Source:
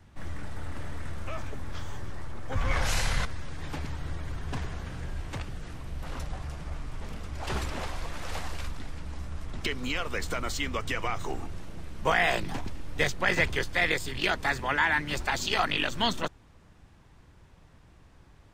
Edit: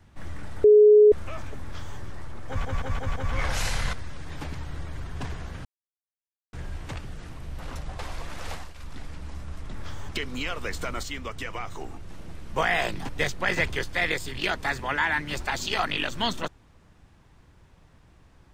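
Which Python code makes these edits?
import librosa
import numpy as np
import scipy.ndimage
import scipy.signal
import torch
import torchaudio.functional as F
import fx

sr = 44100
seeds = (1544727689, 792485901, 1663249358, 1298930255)

y = fx.edit(x, sr, fx.bleep(start_s=0.64, length_s=0.48, hz=421.0, db=-10.5),
    fx.duplicate(start_s=1.63, length_s=0.35, to_s=9.58),
    fx.stutter(start_s=2.48, slice_s=0.17, count=5),
    fx.insert_silence(at_s=4.97, length_s=0.88),
    fx.cut(start_s=6.43, length_s=1.4),
    fx.fade_down_up(start_s=8.34, length_s=0.48, db=-12.0, fade_s=0.24),
    fx.clip_gain(start_s=10.52, length_s=1.07, db=-3.5),
    fx.cut(start_s=12.58, length_s=0.31), tone=tone)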